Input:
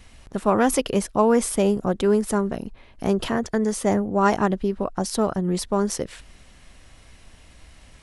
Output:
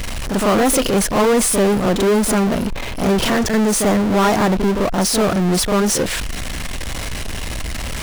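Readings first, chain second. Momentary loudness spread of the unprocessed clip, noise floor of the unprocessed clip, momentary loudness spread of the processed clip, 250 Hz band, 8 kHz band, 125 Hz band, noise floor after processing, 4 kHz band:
9 LU, -50 dBFS, 12 LU, +6.0 dB, +11.0 dB, +7.5 dB, -25 dBFS, +12.5 dB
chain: reverse echo 41 ms -11 dB; power-law curve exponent 0.35; gain -3.5 dB

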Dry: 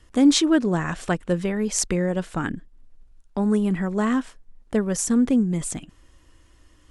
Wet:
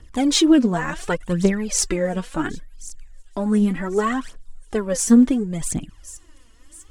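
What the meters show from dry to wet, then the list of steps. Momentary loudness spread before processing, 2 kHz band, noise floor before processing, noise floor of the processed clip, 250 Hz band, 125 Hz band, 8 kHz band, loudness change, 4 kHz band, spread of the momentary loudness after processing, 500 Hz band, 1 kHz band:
12 LU, +2.0 dB, -56 dBFS, -49 dBFS, +2.5 dB, 0.0 dB, +3.0 dB, +2.5 dB, +3.0 dB, 21 LU, +2.5 dB, +3.0 dB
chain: thin delay 1.089 s, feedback 35%, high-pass 5500 Hz, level -14.5 dB; phaser 0.69 Hz, delay 4.6 ms, feedback 69%

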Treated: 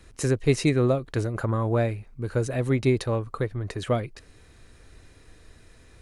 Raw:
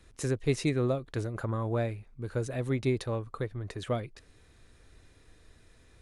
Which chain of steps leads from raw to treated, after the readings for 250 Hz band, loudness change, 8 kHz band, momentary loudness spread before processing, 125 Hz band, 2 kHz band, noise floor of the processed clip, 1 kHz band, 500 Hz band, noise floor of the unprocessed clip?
+6.5 dB, +6.5 dB, +6.5 dB, 8 LU, +6.5 dB, +6.5 dB, -54 dBFS, +6.5 dB, +6.5 dB, -60 dBFS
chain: notch 3500 Hz, Q 16; gain +6.5 dB

